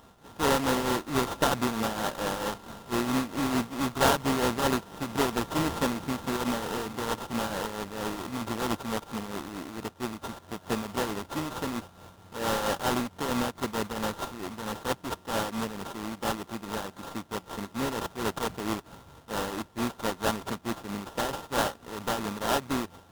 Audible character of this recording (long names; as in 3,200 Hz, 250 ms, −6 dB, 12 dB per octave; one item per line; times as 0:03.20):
a buzz of ramps at a fixed pitch in blocks of 32 samples
tremolo triangle 4.5 Hz, depth 60%
aliases and images of a low sample rate 2,300 Hz, jitter 20%
AAC